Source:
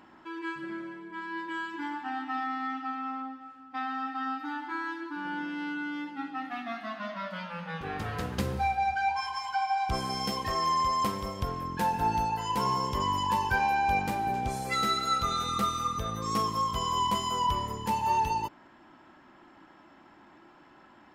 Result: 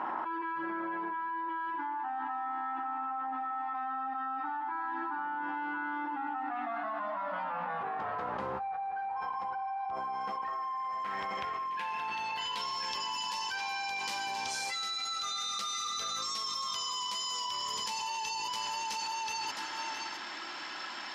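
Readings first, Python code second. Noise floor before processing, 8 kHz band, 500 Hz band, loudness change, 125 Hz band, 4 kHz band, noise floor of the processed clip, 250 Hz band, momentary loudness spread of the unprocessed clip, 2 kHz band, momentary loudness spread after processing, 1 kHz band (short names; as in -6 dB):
-56 dBFS, +3.0 dB, -6.0 dB, -4.5 dB, -21.0 dB, +1.5 dB, -40 dBFS, -9.5 dB, 10 LU, -3.0 dB, 3 LU, -4.5 dB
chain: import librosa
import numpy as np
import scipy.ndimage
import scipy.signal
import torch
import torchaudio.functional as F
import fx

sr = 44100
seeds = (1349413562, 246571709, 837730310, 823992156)

y = x + 10.0 ** (-14.0 / 20.0) * np.pad(x, (int(664 * sr / 1000.0), 0))[:len(x)]
y = fx.rider(y, sr, range_db=3, speed_s=2.0)
y = fx.high_shelf(y, sr, hz=4900.0, db=-7.5)
y = fx.hum_notches(y, sr, base_hz=50, count=2)
y = fx.filter_sweep_bandpass(y, sr, from_hz=930.0, to_hz=5300.0, start_s=10.0, end_s=13.17, q=2.2)
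y = y + 10.0 ** (-11.5 / 20.0) * np.pad(y, (int(1032 * sr / 1000.0), 0))[:len(y)]
y = fx.env_flatten(y, sr, amount_pct=100)
y = y * librosa.db_to_amplitude(-8.5)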